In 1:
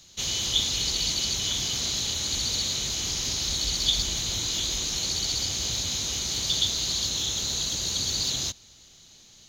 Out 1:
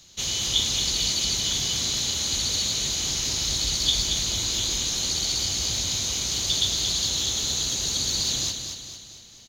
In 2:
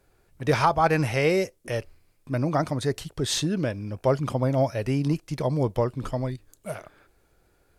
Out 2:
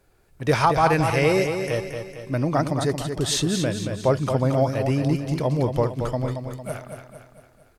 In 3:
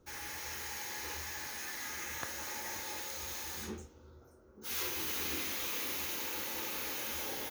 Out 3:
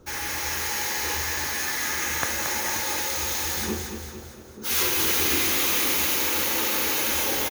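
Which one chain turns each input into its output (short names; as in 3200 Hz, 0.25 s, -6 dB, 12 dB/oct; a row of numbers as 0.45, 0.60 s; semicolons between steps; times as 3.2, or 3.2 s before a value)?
dynamic EQ 9000 Hz, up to +3 dB, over -48 dBFS, Q 1.7; on a send: feedback echo 0.227 s, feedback 50%, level -7 dB; on the sum: match loudness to -23 LUFS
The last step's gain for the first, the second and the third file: +0.5, +2.0, +13.0 dB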